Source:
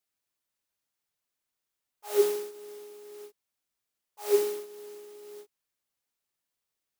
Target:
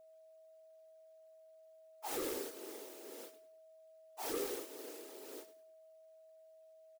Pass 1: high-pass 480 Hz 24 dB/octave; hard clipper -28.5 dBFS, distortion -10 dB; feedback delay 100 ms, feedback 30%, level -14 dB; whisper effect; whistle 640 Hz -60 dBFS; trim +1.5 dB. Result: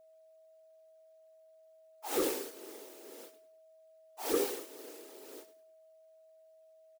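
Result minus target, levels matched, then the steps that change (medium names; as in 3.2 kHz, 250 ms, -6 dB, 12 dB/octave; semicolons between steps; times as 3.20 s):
hard clipper: distortion -7 dB
change: hard clipper -39 dBFS, distortion -2 dB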